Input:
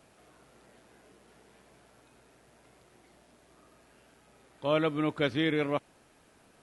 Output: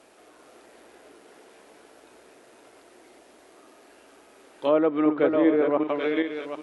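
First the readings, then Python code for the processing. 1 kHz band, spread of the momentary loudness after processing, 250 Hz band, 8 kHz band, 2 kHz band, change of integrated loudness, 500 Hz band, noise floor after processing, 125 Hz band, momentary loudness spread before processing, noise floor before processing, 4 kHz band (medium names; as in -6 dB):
+6.0 dB, 7 LU, +9.0 dB, no reading, +1.5 dB, +6.5 dB, +9.0 dB, -55 dBFS, -7.5 dB, 7 LU, -63 dBFS, -4.0 dB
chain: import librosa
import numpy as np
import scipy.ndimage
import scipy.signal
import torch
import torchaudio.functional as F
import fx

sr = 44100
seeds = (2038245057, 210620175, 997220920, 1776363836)

y = fx.reverse_delay_fb(x, sr, ms=389, feedback_pct=42, wet_db=-4.0)
y = fx.env_lowpass_down(y, sr, base_hz=1100.0, full_db=-23.5)
y = fx.low_shelf_res(y, sr, hz=220.0, db=-12.5, q=1.5)
y = y * 10.0 ** (5.5 / 20.0)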